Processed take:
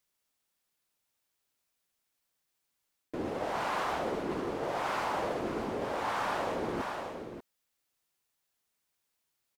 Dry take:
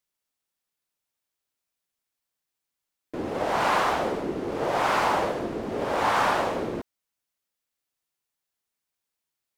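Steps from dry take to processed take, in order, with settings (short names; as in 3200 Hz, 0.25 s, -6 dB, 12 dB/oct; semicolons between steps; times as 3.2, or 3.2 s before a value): echo 0.589 s -16 dB; reverse; compressor 4:1, threshold -36 dBFS, peak gain reduction 14 dB; reverse; gain +3.5 dB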